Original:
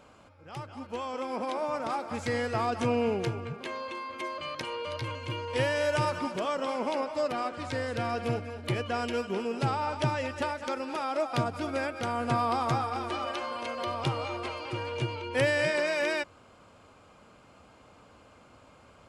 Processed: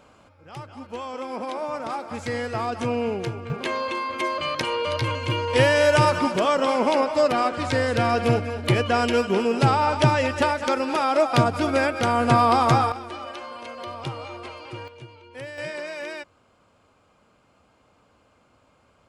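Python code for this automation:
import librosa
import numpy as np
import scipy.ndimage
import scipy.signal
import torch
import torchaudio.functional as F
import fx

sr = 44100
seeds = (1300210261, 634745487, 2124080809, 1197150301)

y = fx.gain(x, sr, db=fx.steps((0.0, 2.0), (3.5, 10.0), (12.92, -2.0), (14.88, -11.5), (15.58, -5.0)))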